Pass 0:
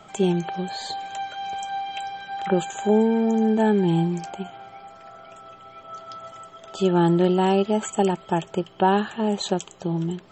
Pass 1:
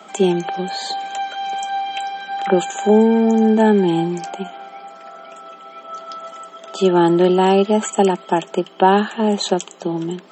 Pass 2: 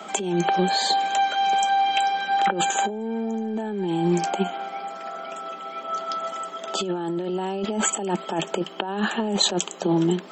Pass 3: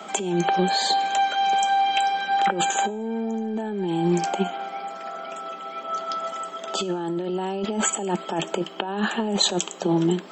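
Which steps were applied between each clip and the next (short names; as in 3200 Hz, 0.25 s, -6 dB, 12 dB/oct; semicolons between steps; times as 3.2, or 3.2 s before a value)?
steep high-pass 190 Hz 48 dB/oct; gain +6.5 dB
negative-ratio compressor -22 dBFS, ratio -1; gain -1.5 dB
de-hum 322.3 Hz, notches 33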